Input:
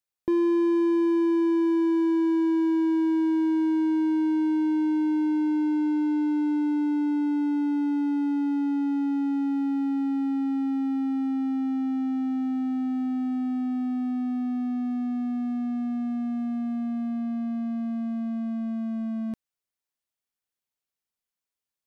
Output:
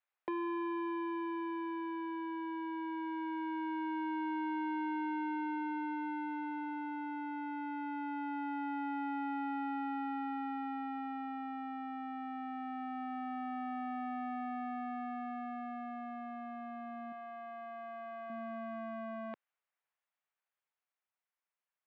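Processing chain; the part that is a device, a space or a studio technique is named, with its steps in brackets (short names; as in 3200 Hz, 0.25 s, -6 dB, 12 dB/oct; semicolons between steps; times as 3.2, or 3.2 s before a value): HPF 180 Hz; three-band isolator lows -24 dB, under 540 Hz, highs -23 dB, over 3000 Hz; 17.12–18.3 bell 230 Hz -13 dB; AM radio (BPF 140–3300 Hz; compressor, threshold -40 dBFS, peak gain reduction 6.5 dB; soft clip -35 dBFS, distortion -28 dB; tremolo 0.21 Hz, depth 36%); gain +6.5 dB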